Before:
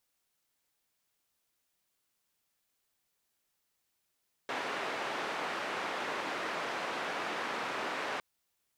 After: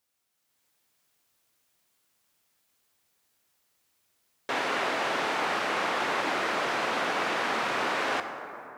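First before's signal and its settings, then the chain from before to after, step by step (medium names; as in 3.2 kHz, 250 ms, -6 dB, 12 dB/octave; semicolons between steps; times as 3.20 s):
noise band 310–1700 Hz, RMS -36.5 dBFS 3.71 s
high-pass 61 Hz; level rider gain up to 7 dB; plate-style reverb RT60 3.4 s, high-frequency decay 0.35×, DRR 7 dB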